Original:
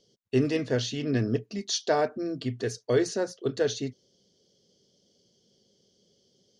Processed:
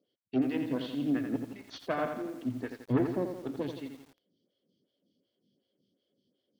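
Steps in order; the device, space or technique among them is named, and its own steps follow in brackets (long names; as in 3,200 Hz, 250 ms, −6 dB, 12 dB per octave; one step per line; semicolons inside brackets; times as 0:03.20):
0:02.90–0:03.61: spectral tilt −2.5 dB per octave
vibe pedal into a guitar amplifier (phaser with staggered stages 2.7 Hz; tube saturation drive 20 dB, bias 0.8; loudspeaker in its box 100–3,600 Hz, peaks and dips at 280 Hz +9 dB, 430 Hz −8 dB, 860 Hz −7 dB)
feedback echo at a low word length 85 ms, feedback 55%, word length 9 bits, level −6.5 dB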